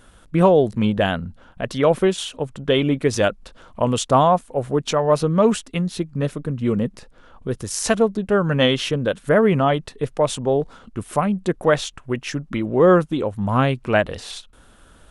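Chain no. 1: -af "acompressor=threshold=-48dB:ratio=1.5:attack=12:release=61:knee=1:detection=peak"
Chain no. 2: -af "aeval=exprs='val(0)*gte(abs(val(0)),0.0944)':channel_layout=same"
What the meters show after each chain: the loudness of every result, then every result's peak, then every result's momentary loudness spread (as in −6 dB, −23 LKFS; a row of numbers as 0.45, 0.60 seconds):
−31.5, −20.5 LKFS; −15.5, −2.5 dBFS; 10, 13 LU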